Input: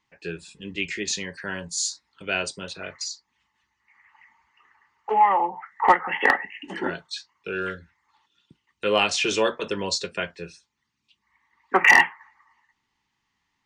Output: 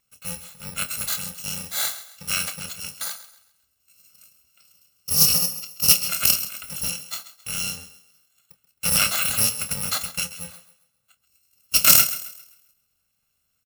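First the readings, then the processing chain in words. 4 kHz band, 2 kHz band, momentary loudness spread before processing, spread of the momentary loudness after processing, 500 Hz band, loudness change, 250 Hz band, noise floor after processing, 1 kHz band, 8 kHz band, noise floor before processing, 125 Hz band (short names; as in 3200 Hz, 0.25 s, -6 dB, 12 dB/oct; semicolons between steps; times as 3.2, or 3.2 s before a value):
+5.5 dB, -8.5 dB, 17 LU, 18 LU, -14.5 dB, +3.0 dB, -5.5 dB, -73 dBFS, -13.5 dB, +11.0 dB, -77 dBFS, +5.0 dB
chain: FFT order left unsorted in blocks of 128 samples; doubler 27 ms -11.5 dB; on a send: thinning echo 0.133 s, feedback 34%, high-pass 170 Hz, level -14.5 dB; on the sum: Doppler distortion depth 0.13 ms; gain +2.5 dB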